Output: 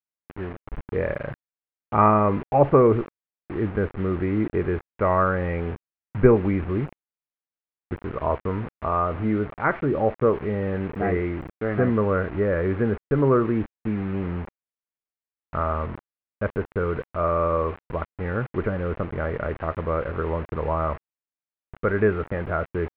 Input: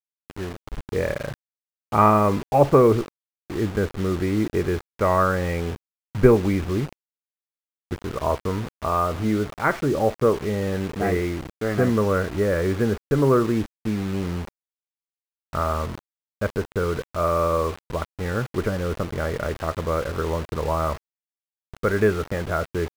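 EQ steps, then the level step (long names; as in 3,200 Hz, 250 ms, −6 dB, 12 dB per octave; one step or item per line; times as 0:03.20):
low-pass filter 2,400 Hz 24 dB per octave
−1.0 dB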